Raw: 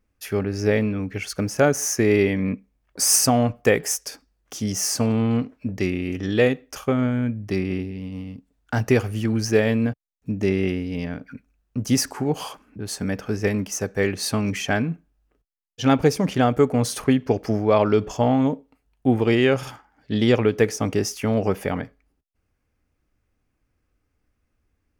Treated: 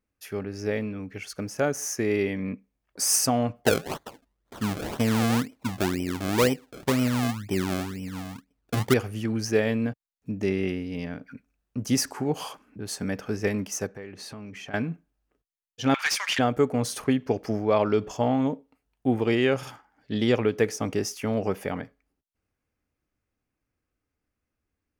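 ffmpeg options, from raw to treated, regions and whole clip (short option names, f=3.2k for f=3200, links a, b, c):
-filter_complex "[0:a]asettb=1/sr,asplit=3[a][b][c];[a]atrim=end=3.644[d];[b]atrim=start=3.64:end=8.94,asetpts=PTS-STARTPTS,afade=t=in:d=0.004:c=qsin,afade=t=out:st=5.296:d=0.004:c=qsin,tiltshelf=f=660:g=3.5,acrusher=samples=32:mix=1:aa=0.000001:lfo=1:lforange=32:lforate=2[e];[c]atrim=start=8.936[f];[d][e]acrossfade=d=0.004:c1=hsin:c2=qsin[g];[g][f]acrossfade=d=0.004:c1=qsin:c2=hsin,asettb=1/sr,asplit=3[h][i][j];[h]atrim=end=13.874[k];[i]atrim=start=13.87:end=14.74,asetpts=PTS-STARTPTS,afade=t=in:d=0.004:c=qsin,afade=t=out:st=0.866:d=0.004:c=qsin,highshelf=f=4.6k:g=-12,acompressor=threshold=-33dB:ratio=5:attack=3.2:release=140:knee=1:detection=peak[l];[j]atrim=start=14.736[m];[k][l]acrossfade=d=0.004:c1=hsin:c2=qsin[n];[n][m]acrossfade=d=0.004:c1=qsin:c2=hsin,asettb=1/sr,asplit=3[o][p][q];[o]atrim=end=15.944[r];[p]atrim=start=15.94:end=16.39,asetpts=PTS-STARTPTS,afade=t=in:d=0.004:c=qsin,afade=t=out:st=0.446:d=0.004:c=qsin,highpass=f=1.4k:w=0.5412,highpass=f=1.4k:w=1.3066,asplit=2[s][t];[t]highpass=f=720:p=1,volume=24dB,asoftclip=type=tanh:threshold=-7.5dB[u];[s][u]amix=inputs=2:normalize=0,lowpass=f=3.8k:p=1,volume=-6dB[v];[q]atrim=start=16.386[w];[r][v]acrossfade=d=0.004:c1=hsin:c2=qsin[x];[x][w]acrossfade=d=0.004:c1=qsin:c2=hsin,lowshelf=f=68:g=-10,dynaudnorm=f=180:g=31:m=11.5dB,volume=-7.5dB"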